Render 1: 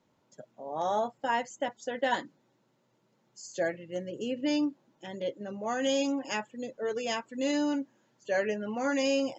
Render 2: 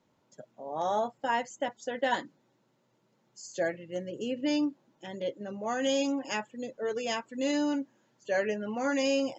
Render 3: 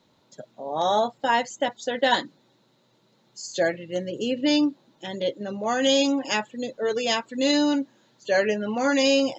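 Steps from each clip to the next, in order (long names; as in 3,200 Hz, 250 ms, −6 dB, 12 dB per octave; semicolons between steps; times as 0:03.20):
no processing that can be heard
parametric band 3,900 Hz +12 dB 0.43 octaves; level +7 dB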